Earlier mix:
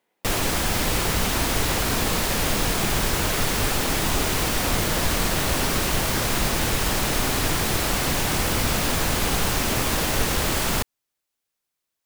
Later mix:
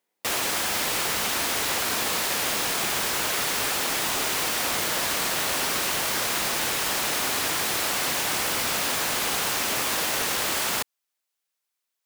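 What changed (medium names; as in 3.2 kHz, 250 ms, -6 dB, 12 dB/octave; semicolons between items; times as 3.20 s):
speech -8.5 dB; background: add high-pass 720 Hz 6 dB/octave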